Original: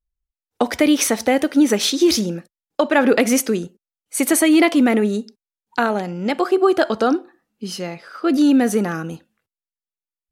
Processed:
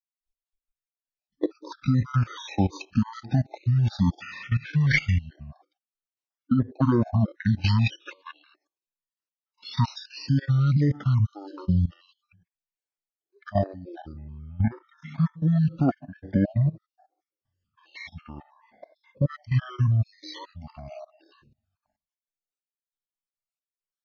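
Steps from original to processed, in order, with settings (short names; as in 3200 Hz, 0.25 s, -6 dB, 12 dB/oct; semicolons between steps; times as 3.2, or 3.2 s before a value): random spectral dropouts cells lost 59%; level quantiser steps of 20 dB; wide varispeed 0.429×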